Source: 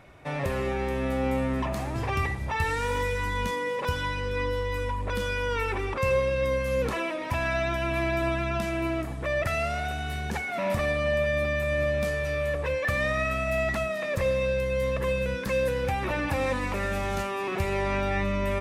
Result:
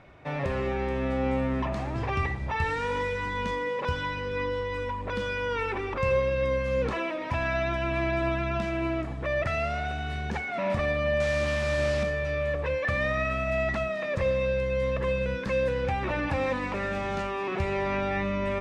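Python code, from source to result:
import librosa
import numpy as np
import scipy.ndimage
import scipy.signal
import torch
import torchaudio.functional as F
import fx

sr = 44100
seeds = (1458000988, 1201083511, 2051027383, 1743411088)

y = fx.delta_mod(x, sr, bps=64000, step_db=-25.5, at=(11.2, 12.03))
y = fx.air_absorb(y, sr, metres=110.0)
y = fx.hum_notches(y, sr, base_hz=50, count=2)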